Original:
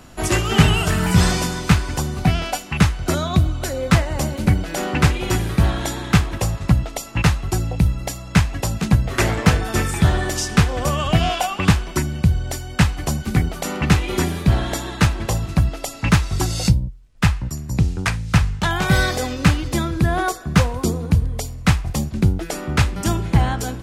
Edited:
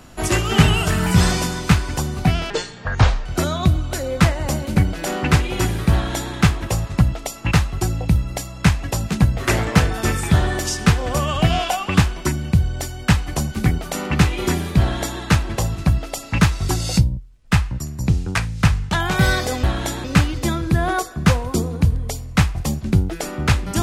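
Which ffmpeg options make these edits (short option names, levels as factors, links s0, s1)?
-filter_complex "[0:a]asplit=5[s0][s1][s2][s3][s4];[s0]atrim=end=2.504[s5];[s1]atrim=start=2.5:end=2.96,asetpts=PTS-STARTPTS,asetrate=26901,aresample=44100[s6];[s2]atrim=start=2.956:end=19.342[s7];[s3]atrim=start=5.628:end=6.042[s8];[s4]atrim=start=19.338[s9];[s5][s6]acrossfade=d=0.004:c1=hsin:c2=hsin[s10];[s10][s7]acrossfade=d=0.004:c1=hsin:c2=hsin[s11];[s11][s8]acrossfade=d=0.004:c1=hsin:c2=hsin[s12];[s12][s9]acrossfade=d=0.004:c1=hsin:c2=hsin"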